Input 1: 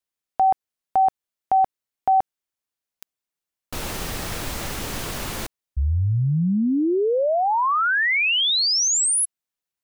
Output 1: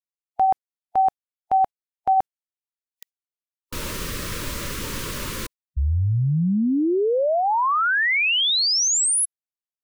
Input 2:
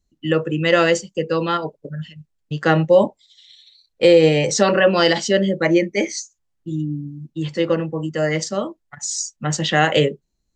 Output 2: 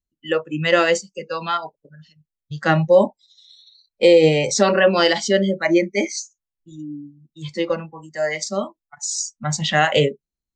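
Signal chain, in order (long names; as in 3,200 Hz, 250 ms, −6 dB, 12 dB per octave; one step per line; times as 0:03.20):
noise reduction from a noise print of the clip's start 16 dB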